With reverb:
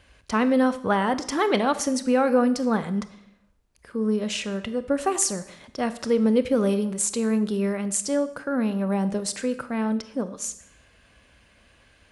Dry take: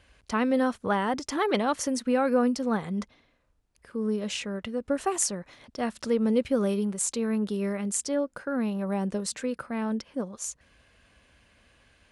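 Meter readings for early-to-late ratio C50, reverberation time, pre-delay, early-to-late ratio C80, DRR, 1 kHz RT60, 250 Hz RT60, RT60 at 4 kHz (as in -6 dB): 14.5 dB, 0.70 s, 24 ms, 16.5 dB, 12.0 dB, 0.75 s, 0.75 s, 0.65 s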